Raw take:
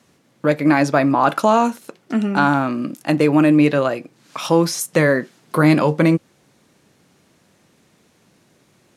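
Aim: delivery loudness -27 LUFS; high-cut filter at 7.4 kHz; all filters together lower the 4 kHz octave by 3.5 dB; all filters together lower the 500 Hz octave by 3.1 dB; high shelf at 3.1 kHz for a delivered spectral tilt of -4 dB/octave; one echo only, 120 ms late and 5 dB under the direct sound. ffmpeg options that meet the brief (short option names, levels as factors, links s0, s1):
-af "lowpass=7400,equalizer=f=500:t=o:g=-4,highshelf=f=3100:g=4.5,equalizer=f=4000:t=o:g=-8,aecho=1:1:120:0.562,volume=0.335"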